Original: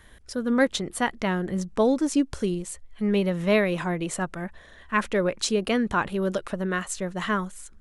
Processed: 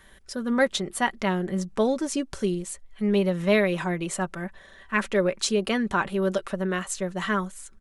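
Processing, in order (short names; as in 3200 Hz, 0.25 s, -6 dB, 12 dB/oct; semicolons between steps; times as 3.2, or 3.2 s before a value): low shelf 220 Hz -5 dB; comb 5.2 ms, depth 43%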